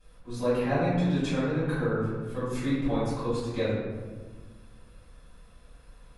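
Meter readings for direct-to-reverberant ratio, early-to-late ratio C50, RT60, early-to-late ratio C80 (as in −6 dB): −14.5 dB, −1.5 dB, 1.4 s, 1.5 dB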